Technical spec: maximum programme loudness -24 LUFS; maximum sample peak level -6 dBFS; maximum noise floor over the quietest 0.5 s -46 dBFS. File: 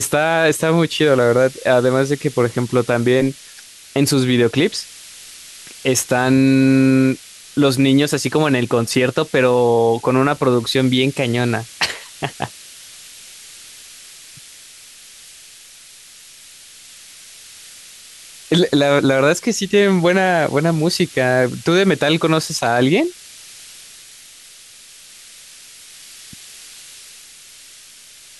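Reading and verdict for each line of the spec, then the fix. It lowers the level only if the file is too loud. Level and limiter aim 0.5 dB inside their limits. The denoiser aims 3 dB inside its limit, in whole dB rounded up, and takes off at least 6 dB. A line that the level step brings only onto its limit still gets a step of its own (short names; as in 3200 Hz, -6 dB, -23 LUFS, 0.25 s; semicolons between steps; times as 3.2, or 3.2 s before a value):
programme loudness -16.5 LUFS: fail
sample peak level -4.5 dBFS: fail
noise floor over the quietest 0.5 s -43 dBFS: fail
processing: gain -8 dB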